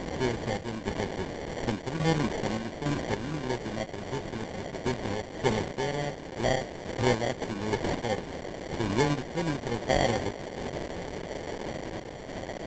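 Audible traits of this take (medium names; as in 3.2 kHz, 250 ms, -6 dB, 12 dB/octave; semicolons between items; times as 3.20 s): a quantiser's noise floor 6-bit, dither triangular; random-step tremolo; aliases and images of a low sample rate 1.3 kHz, jitter 0%; Opus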